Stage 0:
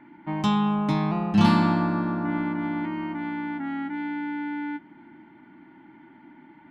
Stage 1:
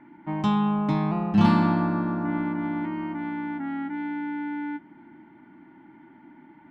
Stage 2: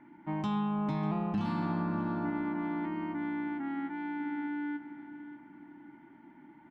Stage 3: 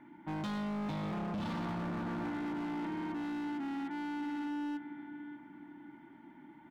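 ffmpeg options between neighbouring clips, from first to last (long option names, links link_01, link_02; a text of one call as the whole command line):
ffmpeg -i in.wav -af "highshelf=frequency=3200:gain=-9.5" out.wav
ffmpeg -i in.wav -filter_complex "[0:a]alimiter=limit=-19dB:level=0:latency=1:release=215,asplit=2[link_01][link_02];[link_02]adelay=595,lowpass=frequency=3400:poles=1,volume=-12dB,asplit=2[link_03][link_04];[link_04]adelay=595,lowpass=frequency=3400:poles=1,volume=0.39,asplit=2[link_05][link_06];[link_06]adelay=595,lowpass=frequency=3400:poles=1,volume=0.39,asplit=2[link_07][link_08];[link_08]adelay=595,lowpass=frequency=3400:poles=1,volume=0.39[link_09];[link_01][link_03][link_05][link_07][link_09]amix=inputs=5:normalize=0,volume=-5dB" out.wav
ffmpeg -i in.wav -af "equalizer=frequency=3500:width_type=o:width=0.32:gain=7.5,volume=35dB,asoftclip=hard,volume=-35dB" out.wav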